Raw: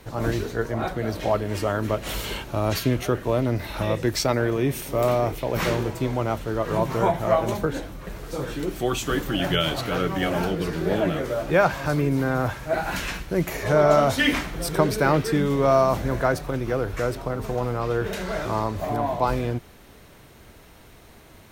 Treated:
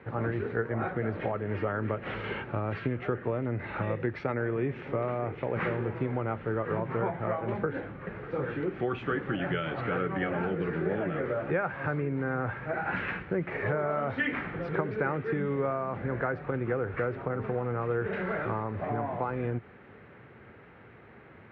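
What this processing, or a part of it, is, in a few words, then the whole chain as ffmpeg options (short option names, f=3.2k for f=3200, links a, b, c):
bass amplifier: -af "acompressor=threshold=-25dB:ratio=6,highpass=f=230:p=1,highpass=67,equalizer=f=110:t=q:w=4:g=5,equalizer=f=300:t=q:w=4:g=-5,equalizer=f=650:t=q:w=4:g=-8,equalizer=f=1k:t=q:w=4:g=-7,lowpass=f=2.1k:w=0.5412,lowpass=f=2.1k:w=1.3066,highshelf=f=6.4k:g=-7,volume=3dB"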